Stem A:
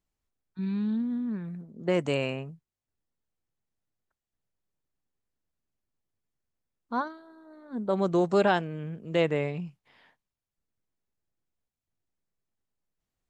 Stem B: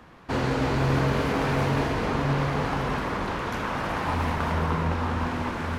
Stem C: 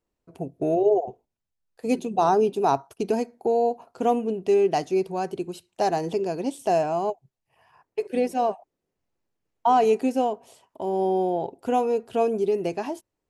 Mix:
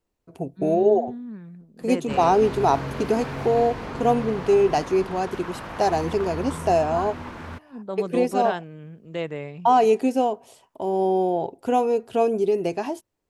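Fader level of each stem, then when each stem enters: −4.5, −7.0, +2.0 decibels; 0.00, 1.80, 0.00 seconds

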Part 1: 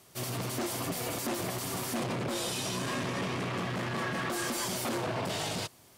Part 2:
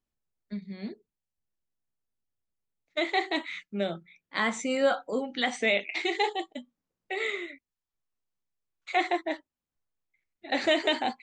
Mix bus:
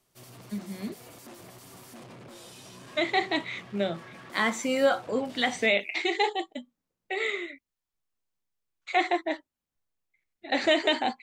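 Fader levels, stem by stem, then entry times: −14.0, +1.5 decibels; 0.00, 0.00 seconds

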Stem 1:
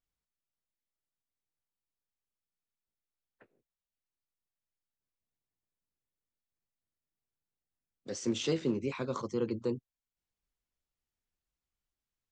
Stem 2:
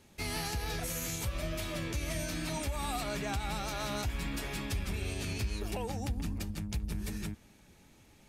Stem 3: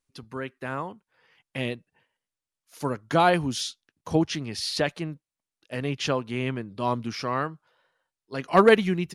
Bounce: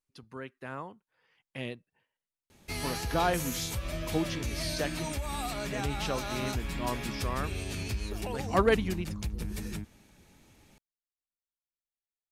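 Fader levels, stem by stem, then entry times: −20.0, +0.5, −8.0 decibels; 0.00, 2.50, 0.00 seconds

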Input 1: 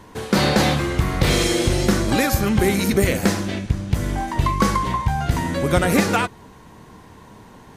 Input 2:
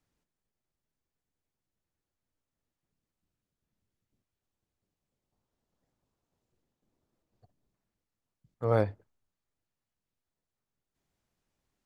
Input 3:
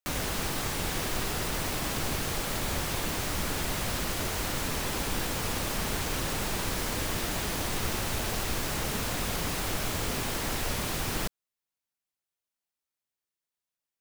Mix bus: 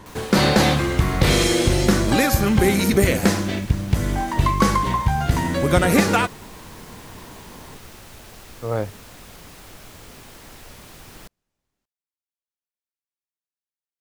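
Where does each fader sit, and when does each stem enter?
+1.0, +1.5, −11.5 decibels; 0.00, 0.00, 0.00 seconds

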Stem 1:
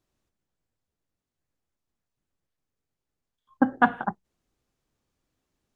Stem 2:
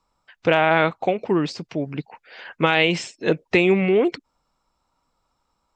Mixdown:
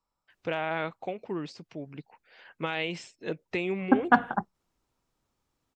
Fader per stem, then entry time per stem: −0.5, −13.5 decibels; 0.30, 0.00 seconds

